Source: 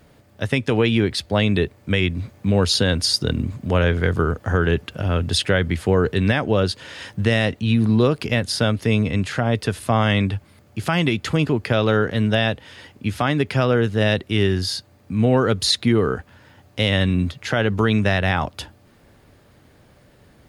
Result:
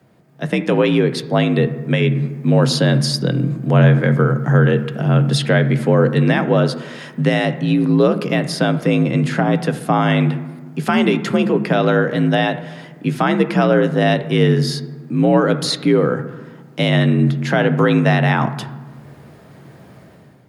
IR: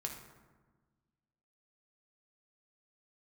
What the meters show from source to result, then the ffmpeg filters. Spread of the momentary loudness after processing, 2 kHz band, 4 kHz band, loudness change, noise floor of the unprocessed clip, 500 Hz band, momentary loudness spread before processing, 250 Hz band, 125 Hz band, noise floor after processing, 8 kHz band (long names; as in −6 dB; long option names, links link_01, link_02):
9 LU, +2.0 dB, −1.5 dB, +4.0 dB, −53 dBFS, +4.5 dB, 8 LU, +5.0 dB, +4.5 dB, −44 dBFS, −1.0 dB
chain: -filter_complex "[0:a]afreqshift=52,dynaudnorm=framelen=130:gausssize=7:maxgain=11.5dB,asplit=2[link_01][link_02];[1:a]atrim=start_sample=2205,lowpass=2400[link_03];[link_02][link_03]afir=irnorm=-1:irlink=0,volume=-1dB[link_04];[link_01][link_04]amix=inputs=2:normalize=0,volume=-6.5dB"